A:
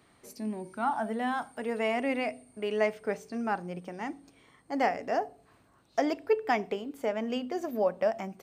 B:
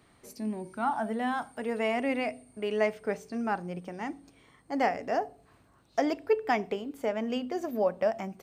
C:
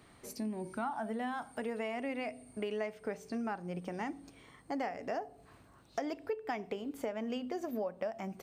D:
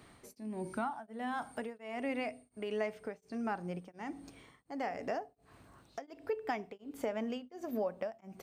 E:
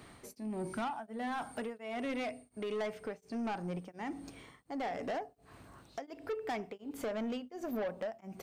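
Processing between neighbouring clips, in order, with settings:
low-shelf EQ 110 Hz +6 dB
downward compressor 5 to 1, threshold −37 dBFS, peak gain reduction 15.5 dB; level +2 dB
tremolo along a rectified sine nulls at 1.4 Hz; level +2 dB
soft clipping −36 dBFS, distortion −10 dB; level +4 dB

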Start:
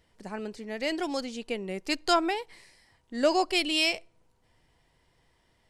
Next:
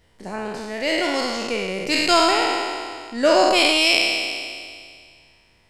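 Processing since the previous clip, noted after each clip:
peak hold with a decay on every bin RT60 2.12 s
level +4.5 dB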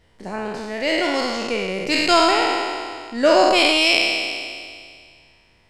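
high-shelf EQ 8,100 Hz −8 dB
level +1.5 dB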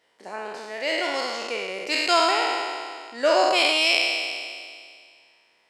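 high-pass filter 460 Hz 12 dB per octave
level −3.5 dB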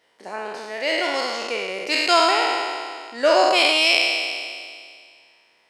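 notch filter 7,500 Hz, Q 18
level +3 dB

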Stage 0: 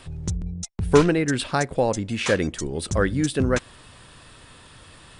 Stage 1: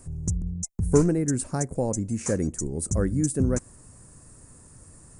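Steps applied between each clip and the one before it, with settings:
drawn EQ curve 220 Hz 0 dB, 2,200 Hz −17 dB, 3,400 Hz −30 dB, 6,700 Hz +4 dB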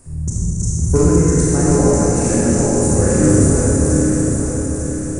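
feedback delay that plays each chunk backwards 448 ms, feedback 66%, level −2 dB
four-comb reverb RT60 2.9 s, combs from 26 ms, DRR −7 dB
level +2 dB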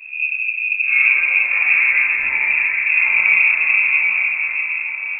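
random phases in long frames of 200 ms
voice inversion scrambler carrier 2,600 Hz
level −2.5 dB

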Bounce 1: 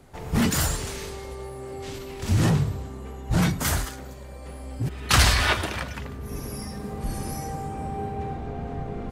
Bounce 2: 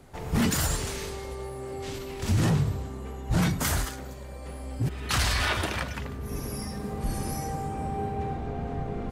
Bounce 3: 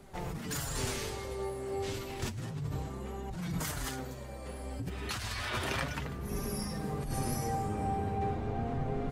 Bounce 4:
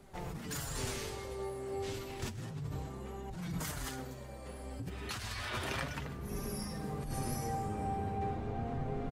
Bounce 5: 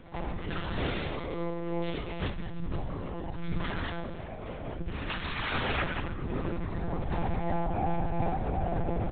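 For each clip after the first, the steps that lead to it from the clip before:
brickwall limiter −16.5 dBFS, peak gain reduction 8.5 dB
compressor whose output falls as the input rises −30 dBFS, ratio −1; flanger 0.31 Hz, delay 4.9 ms, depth 5.9 ms, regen +36%
single-tap delay 130 ms −18 dB; level −3.5 dB
convolution reverb RT60 1.1 s, pre-delay 43 ms, DRR 11 dB; one-pitch LPC vocoder at 8 kHz 170 Hz; level +7.5 dB

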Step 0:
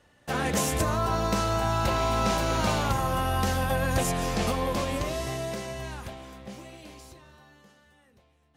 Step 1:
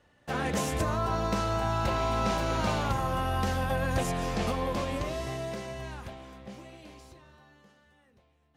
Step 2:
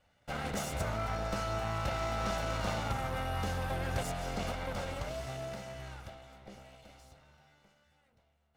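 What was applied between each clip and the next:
high-shelf EQ 6,200 Hz −8.5 dB; level −2.5 dB
lower of the sound and its delayed copy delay 1.4 ms; level −4.5 dB

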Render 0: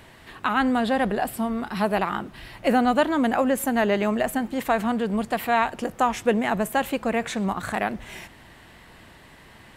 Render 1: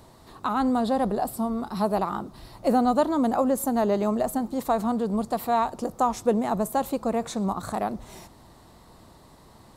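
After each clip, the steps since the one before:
flat-topped bell 2,200 Hz −13.5 dB 1.3 octaves
level −1 dB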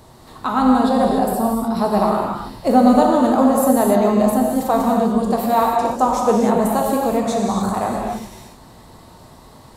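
reverb whose tail is shaped and stops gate 320 ms flat, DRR −1.5 dB
level +4.5 dB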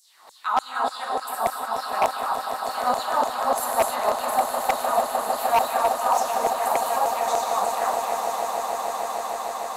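auto-filter high-pass saw down 3.4 Hz 600–7,300 Hz
echo that builds up and dies away 152 ms, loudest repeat 8, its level −11.5 dB
wave folding −6.5 dBFS
level −5 dB

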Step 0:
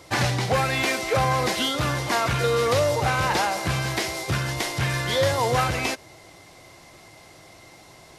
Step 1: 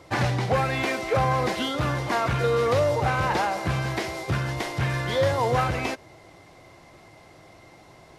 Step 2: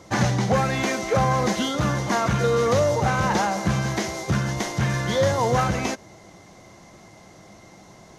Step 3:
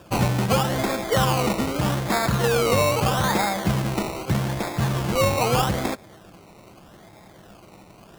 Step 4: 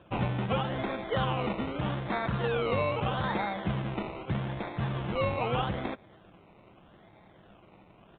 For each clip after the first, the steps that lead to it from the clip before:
high-shelf EQ 3,100 Hz −11 dB
thirty-one-band graphic EQ 200 Hz +12 dB, 2,500 Hz −4 dB, 6,300 Hz +11 dB; level +1.5 dB
sample-and-hold swept by an LFO 21×, swing 60% 0.8 Hz
downsampling to 8,000 Hz; level −8.5 dB

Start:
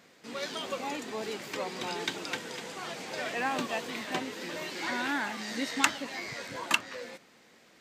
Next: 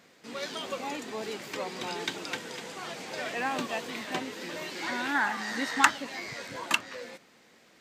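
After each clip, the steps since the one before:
gain on a spectral selection 0:05.15–0:05.90, 720–2,000 Hz +7 dB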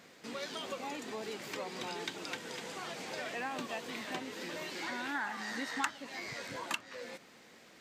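downward compressor 2 to 1, threshold −44 dBFS, peak gain reduction 16 dB
level +1.5 dB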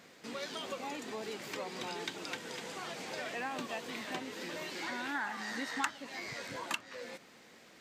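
no processing that can be heard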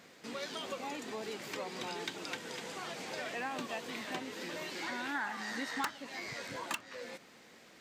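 wave folding −24.5 dBFS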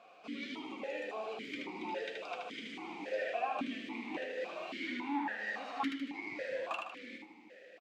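flanger 1.5 Hz, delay 8.9 ms, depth 1.1 ms, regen +53%
repeating echo 77 ms, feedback 48%, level −3.5 dB
formant filter that steps through the vowels 3.6 Hz
level +14 dB

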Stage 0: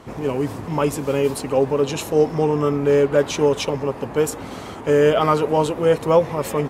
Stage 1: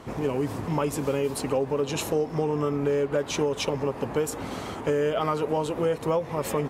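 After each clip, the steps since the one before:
downward compressor, threshold −21 dBFS, peak gain reduction 11.5 dB
level −1 dB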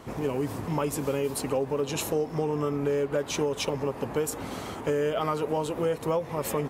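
high-shelf EQ 11,000 Hz +9 dB
level −2 dB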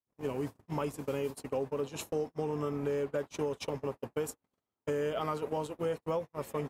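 noise gate −29 dBFS, range −49 dB
level −6 dB

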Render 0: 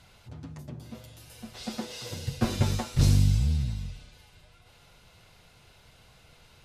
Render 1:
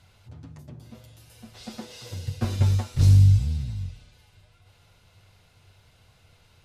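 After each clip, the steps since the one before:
parametric band 96 Hz +12.5 dB 0.31 octaves
level −3.5 dB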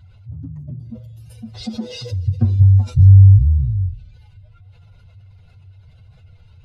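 expanding power law on the bin magnitudes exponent 1.9
in parallel at +2.5 dB: brickwall limiter −19 dBFS, peak gain reduction 9.5 dB
on the sum: level +5 dB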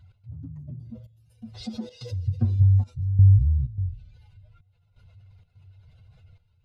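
gate pattern "x.xxxxxxx...xxx" 127 BPM −12 dB
level −7 dB

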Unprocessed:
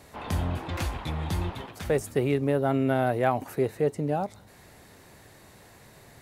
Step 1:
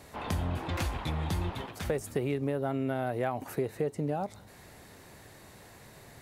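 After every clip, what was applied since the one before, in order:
downward compressor 6 to 1, threshold −27 dBFS, peak gain reduction 9 dB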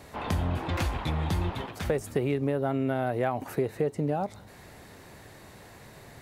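parametric band 11,000 Hz −4 dB 1.9 octaves
level +3.5 dB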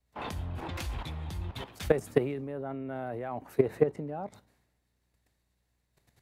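output level in coarse steps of 12 dB
mains hum 60 Hz, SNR 21 dB
multiband upward and downward expander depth 100%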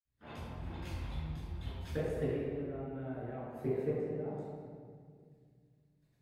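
convolution reverb RT60 2.0 s, pre-delay 50 ms
level +9.5 dB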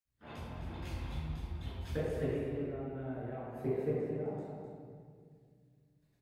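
single-tap delay 255 ms −9 dB

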